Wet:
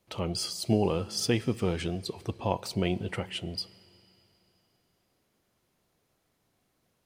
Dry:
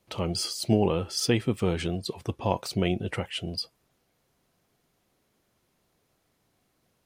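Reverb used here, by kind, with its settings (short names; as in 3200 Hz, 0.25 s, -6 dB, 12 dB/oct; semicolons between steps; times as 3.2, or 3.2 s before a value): Schroeder reverb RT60 3.1 s, combs from 33 ms, DRR 19.5 dB; gain -2.5 dB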